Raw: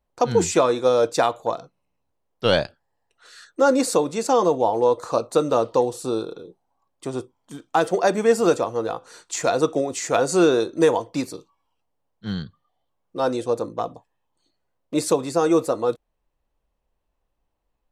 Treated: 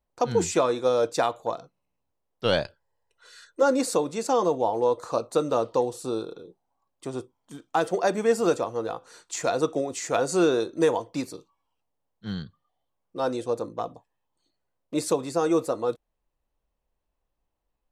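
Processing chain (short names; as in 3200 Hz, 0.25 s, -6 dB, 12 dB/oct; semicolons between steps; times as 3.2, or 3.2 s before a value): 2.64–3.63 comb 2 ms, depth 51%; gain -4.5 dB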